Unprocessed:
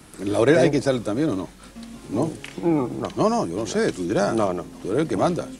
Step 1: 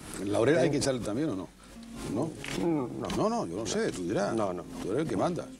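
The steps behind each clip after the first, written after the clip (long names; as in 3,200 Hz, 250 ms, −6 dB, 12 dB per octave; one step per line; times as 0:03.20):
background raised ahead of every attack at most 56 dB per second
level −8.5 dB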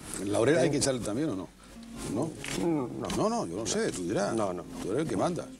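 dynamic equaliser 8,900 Hz, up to +6 dB, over −54 dBFS, Q 0.86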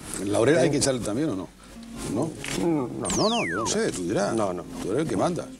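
sound drawn into the spectrogram fall, 0:03.05–0:03.69, 880–9,500 Hz −35 dBFS
level +4.5 dB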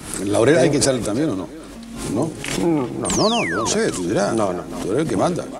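far-end echo of a speakerphone 330 ms, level −14 dB
level +5.5 dB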